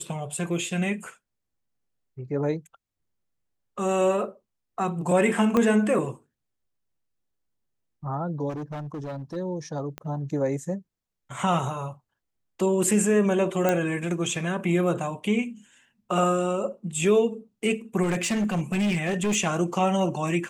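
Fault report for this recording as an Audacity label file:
5.570000	5.570000	click −11 dBFS
8.490000	9.370000	clipping −30.5 dBFS
9.980000	9.980000	click −20 dBFS
13.690000	13.690000	click −10 dBFS
18.020000	19.360000	clipping −21 dBFS

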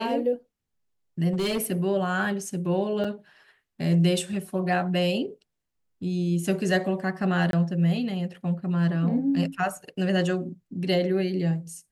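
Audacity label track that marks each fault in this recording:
1.290000	1.720000	clipping −22 dBFS
3.040000	3.040000	drop-out 4.9 ms
7.510000	7.530000	drop-out 22 ms

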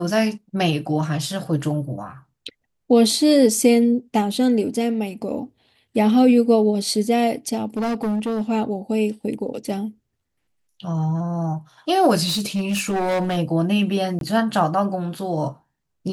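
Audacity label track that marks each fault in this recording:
7.760000	8.420000	clipping −19.5 dBFS
12.260000	13.380000	clipping −18.5 dBFS
14.190000	14.210000	drop-out 22 ms

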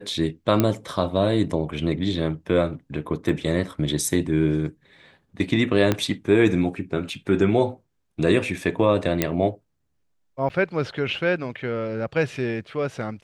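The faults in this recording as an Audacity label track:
0.600000	0.600000	click −6 dBFS
3.290000	3.290000	drop-out 2.5 ms
5.920000	5.920000	click −7 dBFS
9.220000	9.220000	click −4 dBFS
10.490000	10.500000	drop-out 7.9 ms

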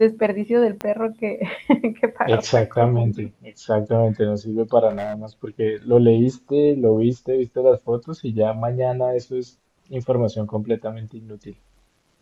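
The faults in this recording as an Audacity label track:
0.810000	0.810000	click −13 dBFS
4.890000	5.240000	clipping −23.5 dBFS

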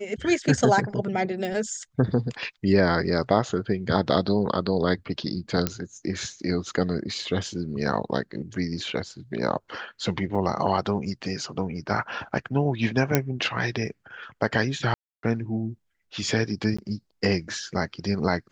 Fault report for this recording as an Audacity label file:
1.450000	1.450000	click
5.670000	5.670000	click −8 dBFS
10.350000	10.350000	drop-out 3.8 ms
13.150000	13.150000	click −4 dBFS
14.940000	15.230000	drop-out 292 ms
16.770000	16.790000	drop-out 15 ms

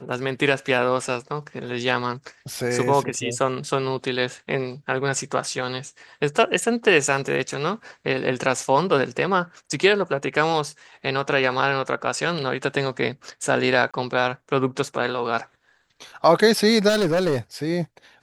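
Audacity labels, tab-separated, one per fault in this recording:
13.910000	13.940000	drop-out 26 ms
16.880000	17.380000	clipping −17 dBFS

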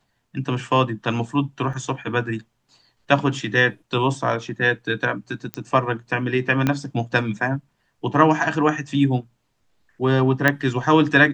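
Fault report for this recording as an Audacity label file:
1.730000	1.730000	drop-out 4.3 ms
5.540000	5.540000	click −12 dBFS
6.670000	6.670000	click −7 dBFS
10.480000	10.480000	click −4 dBFS

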